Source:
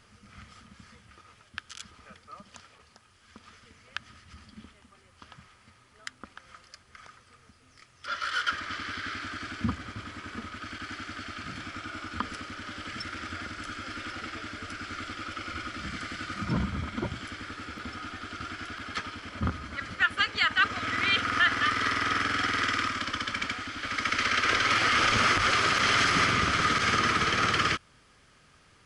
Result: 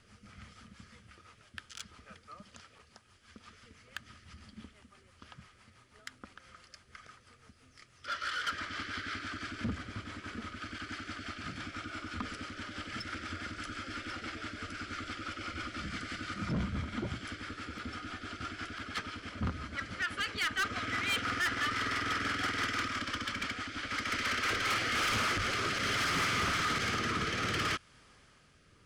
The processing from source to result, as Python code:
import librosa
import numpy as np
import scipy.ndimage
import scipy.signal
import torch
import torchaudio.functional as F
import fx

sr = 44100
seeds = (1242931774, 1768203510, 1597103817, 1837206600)

y = fx.rotary_switch(x, sr, hz=6.0, then_hz=0.65, switch_at_s=24.28)
y = 10.0 ** (-27.5 / 20.0) * np.tanh(y / 10.0 ** (-27.5 / 20.0))